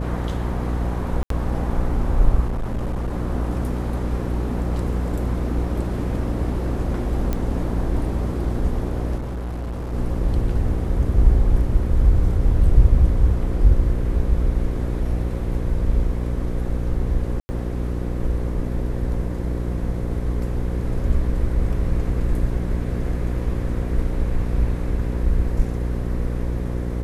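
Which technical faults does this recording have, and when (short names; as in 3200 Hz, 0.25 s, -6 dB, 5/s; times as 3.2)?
buzz 60 Hz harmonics 9 -25 dBFS
1.23–1.3 gap 73 ms
2.47–3.15 clipped -20.5 dBFS
7.33 pop -11 dBFS
9.18–9.94 clipped -25 dBFS
17.4–17.49 gap 90 ms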